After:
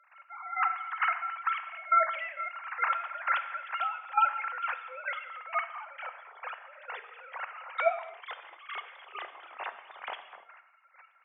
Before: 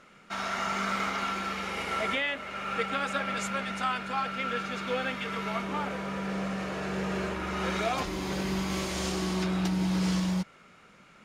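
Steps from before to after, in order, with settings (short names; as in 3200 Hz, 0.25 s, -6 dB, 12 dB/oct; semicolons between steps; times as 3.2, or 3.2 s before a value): sine-wave speech; HPF 730 Hz 24 dB/oct; step gate ".x...x.." 133 bpm -12 dB; non-linear reverb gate 0.32 s falling, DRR 9.5 dB; gain +2.5 dB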